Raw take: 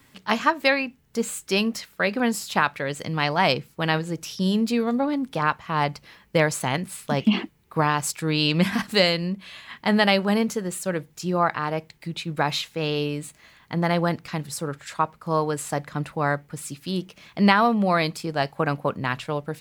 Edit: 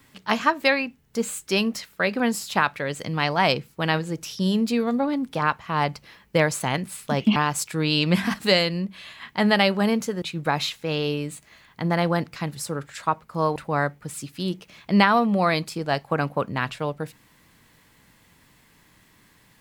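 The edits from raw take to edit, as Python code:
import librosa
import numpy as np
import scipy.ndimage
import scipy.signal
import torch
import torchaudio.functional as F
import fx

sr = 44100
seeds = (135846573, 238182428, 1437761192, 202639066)

y = fx.edit(x, sr, fx.cut(start_s=7.36, length_s=0.48),
    fx.cut(start_s=10.7, length_s=1.44),
    fx.cut(start_s=15.48, length_s=0.56), tone=tone)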